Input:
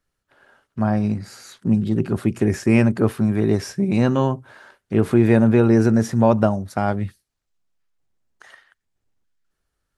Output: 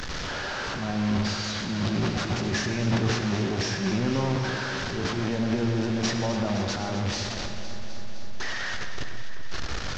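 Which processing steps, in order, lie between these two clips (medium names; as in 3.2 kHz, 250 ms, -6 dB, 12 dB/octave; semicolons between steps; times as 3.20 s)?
one-bit delta coder 32 kbps, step -20.5 dBFS; peak limiter -13 dBFS, peak gain reduction 10 dB; transient shaper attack -10 dB, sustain +11 dB; on a send: echo whose repeats swap between lows and highs 128 ms, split 2.1 kHz, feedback 86%, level -9.5 dB; on the sum: gated-style reverb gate 220 ms flat, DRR 6 dB; trim -6.5 dB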